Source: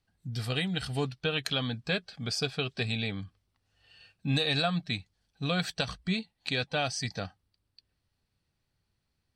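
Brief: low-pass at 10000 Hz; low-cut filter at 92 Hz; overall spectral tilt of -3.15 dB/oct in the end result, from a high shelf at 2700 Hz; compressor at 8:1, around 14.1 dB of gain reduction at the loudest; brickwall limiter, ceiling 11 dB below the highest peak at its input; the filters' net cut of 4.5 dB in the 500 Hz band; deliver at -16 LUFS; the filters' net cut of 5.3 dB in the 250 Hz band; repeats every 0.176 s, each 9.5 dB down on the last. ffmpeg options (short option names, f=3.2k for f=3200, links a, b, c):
-af "highpass=92,lowpass=10k,equalizer=f=250:t=o:g=-7,equalizer=f=500:t=o:g=-4,highshelf=f=2.7k:g=8,acompressor=threshold=-37dB:ratio=8,alimiter=level_in=5.5dB:limit=-24dB:level=0:latency=1,volume=-5.5dB,aecho=1:1:176|352|528|704:0.335|0.111|0.0365|0.012,volume=25.5dB"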